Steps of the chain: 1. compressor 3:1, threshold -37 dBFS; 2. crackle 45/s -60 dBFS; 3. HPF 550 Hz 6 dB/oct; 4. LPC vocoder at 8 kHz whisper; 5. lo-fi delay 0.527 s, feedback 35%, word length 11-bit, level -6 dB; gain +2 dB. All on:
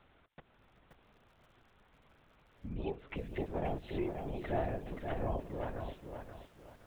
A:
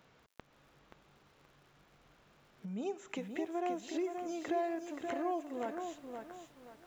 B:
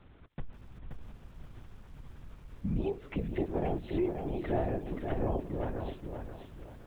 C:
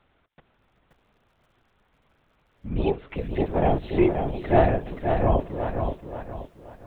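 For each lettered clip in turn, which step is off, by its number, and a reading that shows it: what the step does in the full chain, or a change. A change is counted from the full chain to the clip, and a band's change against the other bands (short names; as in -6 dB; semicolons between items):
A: 4, 125 Hz band -16.0 dB; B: 3, 250 Hz band +5.0 dB; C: 1, mean gain reduction 7.5 dB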